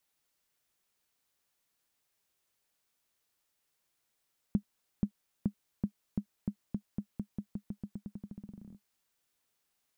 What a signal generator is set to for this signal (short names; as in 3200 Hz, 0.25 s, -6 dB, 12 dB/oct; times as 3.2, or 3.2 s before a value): bouncing ball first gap 0.48 s, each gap 0.89, 204 Hz, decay 82 ms -17 dBFS